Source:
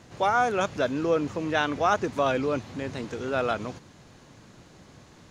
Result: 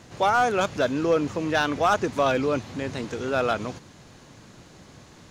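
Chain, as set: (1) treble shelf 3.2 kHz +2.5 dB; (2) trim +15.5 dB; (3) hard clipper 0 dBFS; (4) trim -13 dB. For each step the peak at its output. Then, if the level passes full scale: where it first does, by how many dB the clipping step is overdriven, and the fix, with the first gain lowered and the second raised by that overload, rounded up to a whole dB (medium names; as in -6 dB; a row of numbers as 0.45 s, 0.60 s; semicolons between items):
-9.0 dBFS, +6.5 dBFS, 0.0 dBFS, -13.0 dBFS; step 2, 6.5 dB; step 2 +8.5 dB, step 4 -6 dB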